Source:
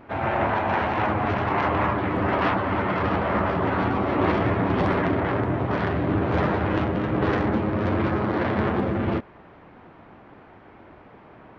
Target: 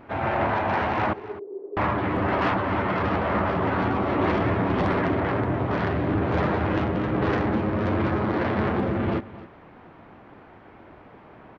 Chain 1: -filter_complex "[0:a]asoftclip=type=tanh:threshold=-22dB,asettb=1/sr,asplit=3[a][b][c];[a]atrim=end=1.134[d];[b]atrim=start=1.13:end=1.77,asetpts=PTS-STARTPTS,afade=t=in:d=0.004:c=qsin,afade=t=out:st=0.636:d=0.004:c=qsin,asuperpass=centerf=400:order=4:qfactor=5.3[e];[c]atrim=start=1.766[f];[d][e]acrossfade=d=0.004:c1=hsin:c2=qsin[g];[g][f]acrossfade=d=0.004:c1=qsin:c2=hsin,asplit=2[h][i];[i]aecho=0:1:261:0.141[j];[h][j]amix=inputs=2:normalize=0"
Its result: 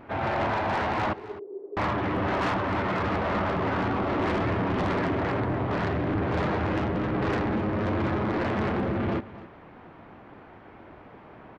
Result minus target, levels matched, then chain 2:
soft clip: distortion +11 dB
-filter_complex "[0:a]asoftclip=type=tanh:threshold=-13dB,asettb=1/sr,asplit=3[a][b][c];[a]atrim=end=1.134[d];[b]atrim=start=1.13:end=1.77,asetpts=PTS-STARTPTS,afade=t=in:d=0.004:c=qsin,afade=t=out:st=0.636:d=0.004:c=qsin,asuperpass=centerf=400:order=4:qfactor=5.3[e];[c]atrim=start=1.766[f];[d][e]acrossfade=d=0.004:c1=hsin:c2=qsin[g];[g][f]acrossfade=d=0.004:c1=qsin:c2=hsin,asplit=2[h][i];[i]aecho=0:1:261:0.141[j];[h][j]amix=inputs=2:normalize=0"

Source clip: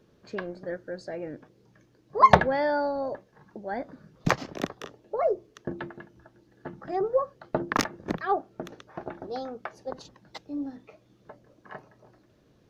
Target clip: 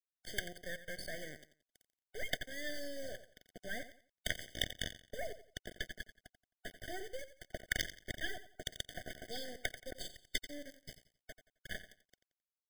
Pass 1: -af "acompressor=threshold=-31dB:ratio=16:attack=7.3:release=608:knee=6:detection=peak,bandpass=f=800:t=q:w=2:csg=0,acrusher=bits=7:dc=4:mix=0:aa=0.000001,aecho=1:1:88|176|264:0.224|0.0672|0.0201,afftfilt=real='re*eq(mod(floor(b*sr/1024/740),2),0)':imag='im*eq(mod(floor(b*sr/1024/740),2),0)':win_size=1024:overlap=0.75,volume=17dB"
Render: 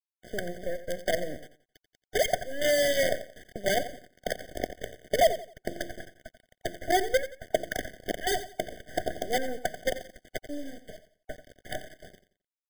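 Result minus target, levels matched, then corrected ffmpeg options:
1000 Hz band +9.0 dB
-af "acompressor=threshold=-31dB:ratio=16:attack=7.3:release=608:knee=6:detection=peak,bandpass=f=3.1k:t=q:w=2:csg=0,acrusher=bits=7:dc=4:mix=0:aa=0.000001,aecho=1:1:88|176|264:0.224|0.0672|0.0201,afftfilt=real='re*eq(mod(floor(b*sr/1024/740),2),0)':imag='im*eq(mod(floor(b*sr/1024/740),2),0)':win_size=1024:overlap=0.75,volume=17dB"

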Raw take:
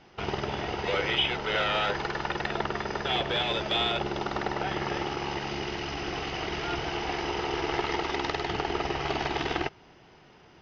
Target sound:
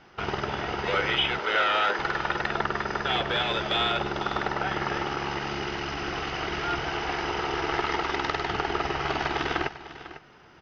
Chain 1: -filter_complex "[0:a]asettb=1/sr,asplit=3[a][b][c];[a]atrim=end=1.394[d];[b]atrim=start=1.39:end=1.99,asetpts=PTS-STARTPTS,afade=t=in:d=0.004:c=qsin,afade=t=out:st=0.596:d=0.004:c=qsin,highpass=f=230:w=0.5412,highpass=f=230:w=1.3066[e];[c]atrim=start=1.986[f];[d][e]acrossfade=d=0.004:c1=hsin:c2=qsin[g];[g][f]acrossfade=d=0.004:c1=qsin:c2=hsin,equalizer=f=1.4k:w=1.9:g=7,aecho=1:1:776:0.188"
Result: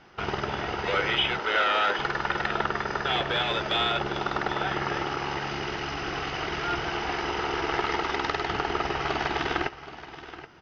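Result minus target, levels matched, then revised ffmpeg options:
echo 0.277 s late
-filter_complex "[0:a]asettb=1/sr,asplit=3[a][b][c];[a]atrim=end=1.394[d];[b]atrim=start=1.39:end=1.99,asetpts=PTS-STARTPTS,afade=t=in:d=0.004:c=qsin,afade=t=out:st=0.596:d=0.004:c=qsin,highpass=f=230:w=0.5412,highpass=f=230:w=1.3066[e];[c]atrim=start=1.986[f];[d][e]acrossfade=d=0.004:c1=hsin:c2=qsin[g];[g][f]acrossfade=d=0.004:c1=qsin:c2=hsin,equalizer=f=1.4k:w=1.9:g=7,aecho=1:1:499:0.188"

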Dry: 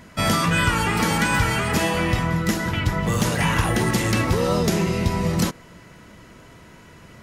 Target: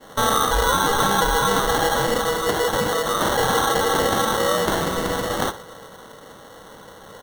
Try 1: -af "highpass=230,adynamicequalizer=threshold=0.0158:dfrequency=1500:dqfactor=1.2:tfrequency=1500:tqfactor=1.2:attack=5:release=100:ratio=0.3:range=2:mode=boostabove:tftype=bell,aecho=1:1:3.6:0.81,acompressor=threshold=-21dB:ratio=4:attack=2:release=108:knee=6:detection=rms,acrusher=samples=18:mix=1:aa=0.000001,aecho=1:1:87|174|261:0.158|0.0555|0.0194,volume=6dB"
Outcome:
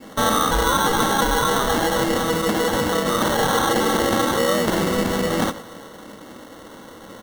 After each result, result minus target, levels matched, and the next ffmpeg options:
echo 25 ms late; 250 Hz band +5.0 dB
-af "highpass=230,adynamicequalizer=threshold=0.0158:dfrequency=1500:dqfactor=1.2:tfrequency=1500:tqfactor=1.2:attack=5:release=100:ratio=0.3:range=2:mode=boostabove:tftype=bell,aecho=1:1:3.6:0.81,acompressor=threshold=-21dB:ratio=4:attack=2:release=108:knee=6:detection=rms,acrusher=samples=18:mix=1:aa=0.000001,aecho=1:1:62|124|186:0.158|0.0555|0.0194,volume=6dB"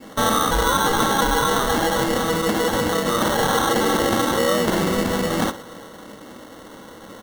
250 Hz band +5.0 dB
-af "highpass=580,adynamicequalizer=threshold=0.0158:dfrequency=1500:dqfactor=1.2:tfrequency=1500:tqfactor=1.2:attack=5:release=100:ratio=0.3:range=2:mode=boostabove:tftype=bell,aecho=1:1:3.6:0.81,acompressor=threshold=-21dB:ratio=4:attack=2:release=108:knee=6:detection=rms,acrusher=samples=18:mix=1:aa=0.000001,aecho=1:1:62|124|186:0.158|0.0555|0.0194,volume=6dB"

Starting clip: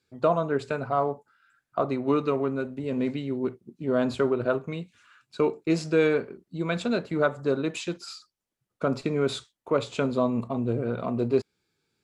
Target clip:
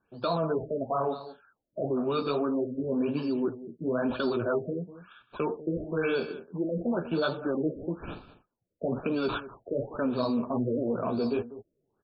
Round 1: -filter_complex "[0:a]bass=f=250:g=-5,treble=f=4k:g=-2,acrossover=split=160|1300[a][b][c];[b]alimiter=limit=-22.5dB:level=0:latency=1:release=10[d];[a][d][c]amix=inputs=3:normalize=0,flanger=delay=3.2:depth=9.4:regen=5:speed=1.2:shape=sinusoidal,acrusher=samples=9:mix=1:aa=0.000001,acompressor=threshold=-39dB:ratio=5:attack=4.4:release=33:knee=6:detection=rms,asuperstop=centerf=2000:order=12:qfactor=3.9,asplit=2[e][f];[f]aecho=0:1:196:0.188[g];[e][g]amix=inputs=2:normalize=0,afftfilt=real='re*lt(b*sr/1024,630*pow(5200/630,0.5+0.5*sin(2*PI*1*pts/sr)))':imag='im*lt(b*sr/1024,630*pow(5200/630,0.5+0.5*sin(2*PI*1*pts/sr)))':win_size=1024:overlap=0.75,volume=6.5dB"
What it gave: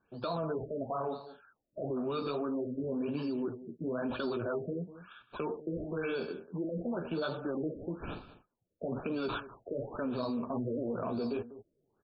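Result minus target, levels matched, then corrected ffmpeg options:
compressor: peak gain reduction +7.5 dB
-filter_complex "[0:a]bass=f=250:g=-5,treble=f=4k:g=-2,acrossover=split=160|1300[a][b][c];[b]alimiter=limit=-22.5dB:level=0:latency=1:release=10[d];[a][d][c]amix=inputs=3:normalize=0,flanger=delay=3.2:depth=9.4:regen=5:speed=1.2:shape=sinusoidal,acrusher=samples=9:mix=1:aa=0.000001,acompressor=threshold=-29.5dB:ratio=5:attack=4.4:release=33:knee=6:detection=rms,asuperstop=centerf=2000:order=12:qfactor=3.9,asplit=2[e][f];[f]aecho=0:1:196:0.188[g];[e][g]amix=inputs=2:normalize=0,afftfilt=real='re*lt(b*sr/1024,630*pow(5200/630,0.5+0.5*sin(2*PI*1*pts/sr)))':imag='im*lt(b*sr/1024,630*pow(5200/630,0.5+0.5*sin(2*PI*1*pts/sr)))':win_size=1024:overlap=0.75,volume=6.5dB"

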